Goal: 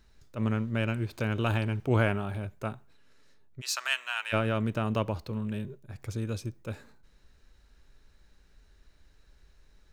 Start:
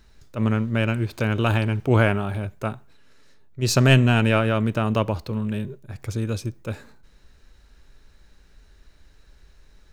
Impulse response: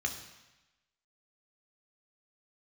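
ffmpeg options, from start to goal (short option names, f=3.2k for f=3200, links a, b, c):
-filter_complex "[0:a]asplit=3[a][b][c];[a]afade=t=out:st=3.6:d=0.02[d];[b]highpass=f=1k:w=0.5412,highpass=f=1k:w=1.3066,afade=t=in:st=3.6:d=0.02,afade=t=out:st=4.32:d=0.02[e];[c]afade=t=in:st=4.32:d=0.02[f];[d][e][f]amix=inputs=3:normalize=0,volume=-7dB"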